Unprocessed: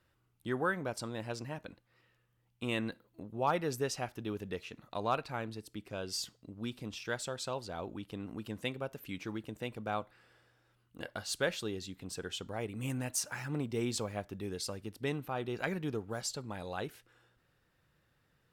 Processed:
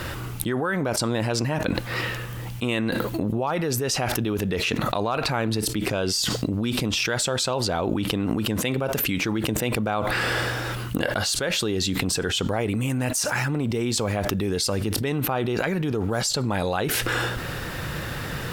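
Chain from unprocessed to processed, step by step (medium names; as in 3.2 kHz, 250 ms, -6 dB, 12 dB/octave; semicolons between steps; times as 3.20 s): level flattener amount 100%; trim +2.5 dB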